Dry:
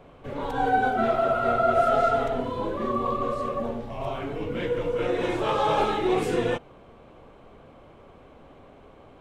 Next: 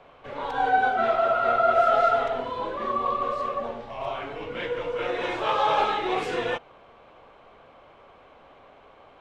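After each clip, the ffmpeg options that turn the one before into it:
-filter_complex "[0:a]acrossover=split=550 6000:gain=0.224 1 0.158[a][b][c];[a][b][c]amix=inputs=3:normalize=0,volume=3dB"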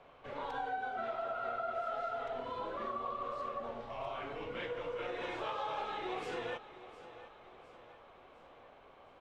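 -af "acompressor=threshold=-30dB:ratio=4,aecho=1:1:708|1416|2124|2832|3540:0.168|0.0856|0.0437|0.0223|0.0114,volume=-7dB"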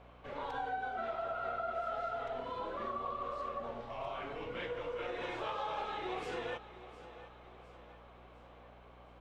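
-af "aeval=exprs='val(0)+0.00112*(sin(2*PI*60*n/s)+sin(2*PI*2*60*n/s)/2+sin(2*PI*3*60*n/s)/3+sin(2*PI*4*60*n/s)/4+sin(2*PI*5*60*n/s)/5)':c=same"

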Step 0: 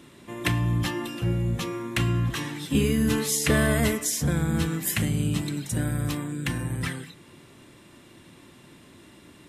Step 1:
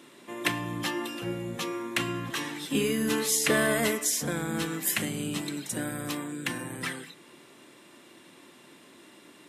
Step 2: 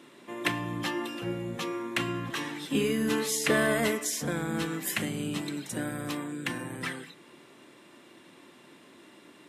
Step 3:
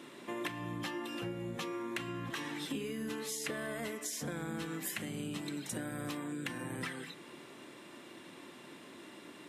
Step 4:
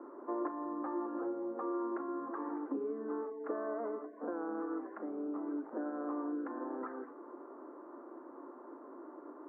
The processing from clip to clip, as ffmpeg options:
-af "highpass=280"
-af "highshelf=f=4.8k:g=-6.5"
-af "acompressor=threshold=-38dB:ratio=12,volume=2dB"
-af "asuperpass=centerf=600:order=12:qfactor=0.56,volume=4dB"

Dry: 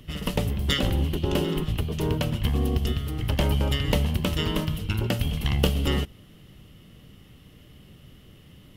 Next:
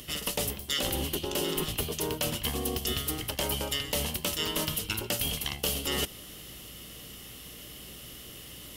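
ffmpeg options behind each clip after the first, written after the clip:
-af "bass=f=250:g=-13,treble=f=4k:g=13,areverse,acompressor=threshold=-34dB:ratio=12,areverse,aeval=exprs='val(0)+0.000794*(sin(2*PI*60*n/s)+sin(2*PI*2*60*n/s)/2+sin(2*PI*3*60*n/s)/3+sin(2*PI*4*60*n/s)/4+sin(2*PI*5*60*n/s)/5)':c=same,volume=7dB"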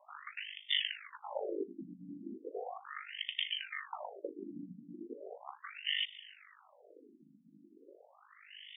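-af "bass=f=250:g=-10,treble=f=4k:g=-1,aeval=exprs='val(0)*sin(2*PI*25*n/s)':c=same,afftfilt=real='re*between(b*sr/1024,210*pow(2600/210,0.5+0.5*sin(2*PI*0.37*pts/sr))/1.41,210*pow(2600/210,0.5+0.5*sin(2*PI*0.37*pts/sr))*1.41)':imag='im*between(b*sr/1024,210*pow(2600/210,0.5+0.5*sin(2*PI*0.37*pts/sr))/1.41,210*pow(2600/210,0.5+0.5*sin(2*PI*0.37*pts/sr))*1.41)':win_size=1024:overlap=0.75,volume=3dB"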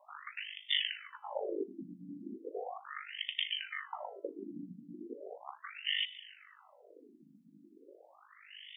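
-af "areverse,acompressor=mode=upward:threshold=-58dB:ratio=2.5,areverse,highpass=76,bandreject=f=332.6:t=h:w=4,bandreject=f=665.2:t=h:w=4,bandreject=f=997.8:t=h:w=4,bandreject=f=1.3304k:t=h:w=4,bandreject=f=1.663k:t=h:w=4,bandreject=f=1.9956k:t=h:w=4,bandreject=f=2.3282k:t=h:w=4,bandreject=f=2.6608k:t=h:w=4,bandreject=f=2.9934k:t=h:w=4,volume=1dB"

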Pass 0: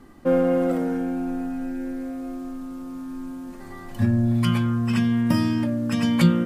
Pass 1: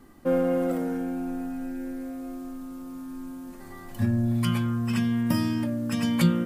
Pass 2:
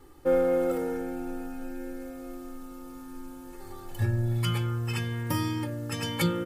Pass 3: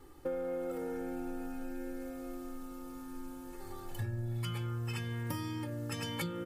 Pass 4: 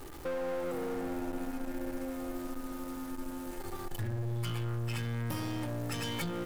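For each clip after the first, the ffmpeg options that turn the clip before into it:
-af "highshelf=f=9.9k:g=11,volume=-4dB"
-af "aecho=1:1:2.3:0.98,volume=-2.5dB"
-af "acompressor=threshold=-32dB:ratio=6,volume=-2.5dB"
-af "aeval=exprs='val(0)+0.5*0.00447*sgn(val(0))':c=same,aeval=exprs='(tanh(70.8*val(0)+0.5)-tanh(0.5))/70.8':c=same,volume=5.5dB"

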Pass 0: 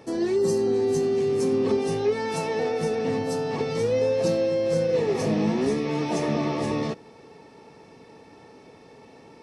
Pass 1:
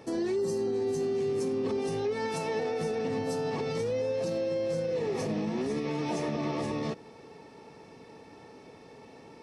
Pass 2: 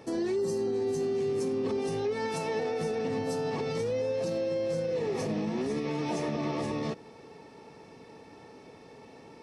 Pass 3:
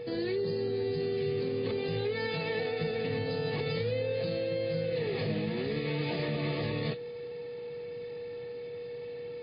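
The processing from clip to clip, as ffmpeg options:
-af "alimiter=limit=-22dB:level=0:latency=1:release=94,volume=-1.5dB"
-af anull
-af "equalizer=f=125:t=o:w=1:g=8,equalizer=f=250:t=o:w=1:g=-6,equalizer=f=1k:t=o:w=1:g=-8,equalizer=f=2k:t=o:w=1:g=5,equalizer=f=4k:t=o:w=1:g=6,aeval=exprs='val(0)+0.0141*sin(2*PI*480*n/s)':c=same" -ar 11025 -c:a libmp3lame -b:a 24k

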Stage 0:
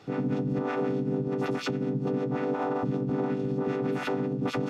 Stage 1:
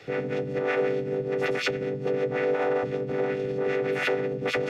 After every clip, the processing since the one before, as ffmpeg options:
-filter_complex "[0:a]equalizer=f=250:t=o:w=1:g=-10,equalizer=f=500:t=o:w=1:g=8,equalizer=f=1k:t=o:w=1:g=-10,equalizer=f=2k:t=o:w=1:g=11,acrossover=split=320|880|2400[a][b][c][d];[a]alimiter=level_in=11.5dB:limit=-24dB:level=0:latency=1:release=24,volume=-11.5dB[e];[e][b][c][d]amix=inputs=4:normalize=0,volume=3.5dB"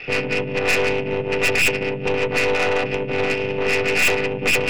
-af "lowpass=f=2.6k:t=q:w=12,aeval=exprs='(tanh(14.1*val(0)+0.7)-tanh(0.7))/14.1':c=same,volume=8.5dB"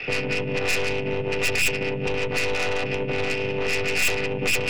-filter_complex "[0:a]acrossover=split=120|3000[a][b][c];[b]acompressor=threshold=-25dB:ratio=6[d];[a][d][c]amix=inputs=3:normalize=0,asplit=2[e][f];[f]alimiter=limit=-19.5dB:level=0:latency=1,volume=-1dB[g];[e][g]amix=inputs=2:normalize=0,volume=-3.5dB"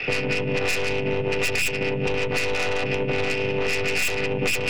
-af "acompressor=threshold=-23dB:ratio=4,volume=3.5dB"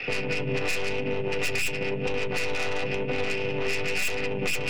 -af "flanger=delay=3.6:depth=4.2:regen=66:speed=0.95:shape=triangular"

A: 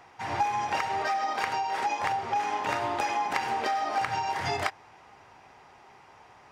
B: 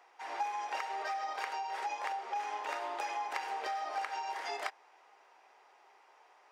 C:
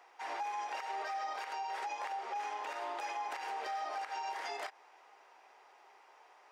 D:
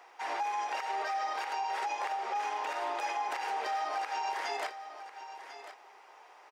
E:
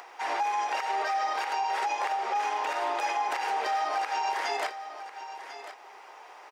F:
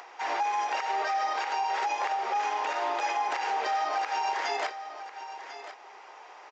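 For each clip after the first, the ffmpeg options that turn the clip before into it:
-af "highpass=f=390:w=0.5412,highpass=f=390:w=1.3066,volume=-8.5dB"
-af "alimiter=level_in=8.5dB:limit=-24dB:level=0:latency=1:release=97,volume=-8.5dB,volume=1.5dB"
-af "aecho=1:1:1046:0.251,volume=5dB"
-af "acompressor=mode=upward:threshold=-48dB:ratio=2.5,volume=5dB"
-af "aresample=16000,aresample=44100"

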